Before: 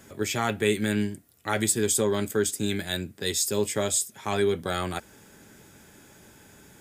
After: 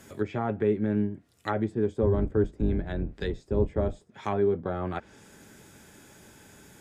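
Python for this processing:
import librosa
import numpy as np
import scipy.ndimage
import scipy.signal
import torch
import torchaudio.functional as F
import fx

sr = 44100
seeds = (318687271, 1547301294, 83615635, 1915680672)

y = fx.octave_divider(x, sr, octaves=2, level_db=2.0, at=(2.02, 4.03))
y = fx.env_lowpass_down(y, sr, base_hz=840.0, full_db=-24.0)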